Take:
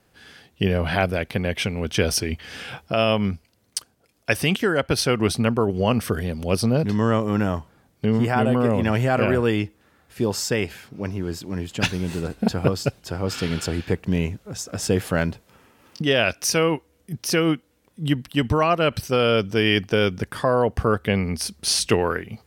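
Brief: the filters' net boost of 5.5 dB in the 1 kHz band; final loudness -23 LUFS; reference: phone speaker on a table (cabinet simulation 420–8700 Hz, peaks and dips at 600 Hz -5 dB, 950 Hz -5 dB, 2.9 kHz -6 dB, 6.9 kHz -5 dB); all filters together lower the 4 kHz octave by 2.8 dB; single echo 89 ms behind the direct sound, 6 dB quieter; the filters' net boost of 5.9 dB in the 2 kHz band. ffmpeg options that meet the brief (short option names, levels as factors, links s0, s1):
-af "highpass=f=420:w=0.5412,highpass=f=420:w=1.3066,equalizer=f=600:t=q:w=4:g=-5,equalizer=f=950:t=q:w=4:g=-5,equalizer=f=2900:t=q:w=4:g=-6,equalizer=f=6900:t=q:w=4:g=-5,lowpass=f=8700:w=0.5412,lowpass=f=8700:w=1.3066,equalizer=f=1000:t=o:g=8.5,equalizer=f=2000:t=o:g=7,equalizer=f=4000:t=o:g=-3,aecho=1:1:89:0.501,volume=0.891"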